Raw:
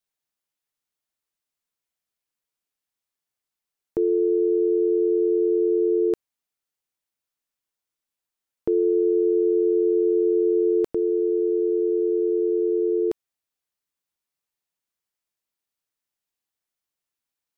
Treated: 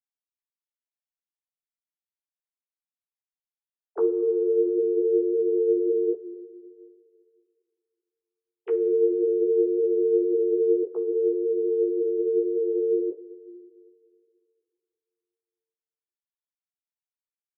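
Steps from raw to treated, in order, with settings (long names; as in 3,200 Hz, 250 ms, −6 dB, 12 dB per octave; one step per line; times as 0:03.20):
three sine waves on the formant tracks
coupled-rooms reverb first 0.22 s, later 2.6 s, from −18 dB, DRR 6.5 dB
string-ensemble chorus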